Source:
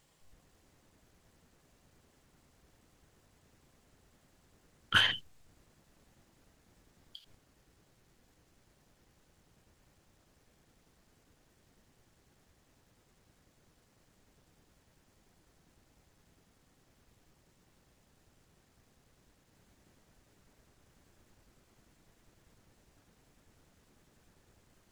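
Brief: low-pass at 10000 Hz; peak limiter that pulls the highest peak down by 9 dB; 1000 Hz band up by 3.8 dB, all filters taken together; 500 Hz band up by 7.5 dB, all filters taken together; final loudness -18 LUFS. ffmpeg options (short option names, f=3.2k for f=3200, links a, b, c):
-af "lowpass=10k,equalizer=f=500:t=o:g=8,equalizer=f=1k:t=o:g=4,volume=16dB,alimiter=limit=-3dB:level=0:latency=1"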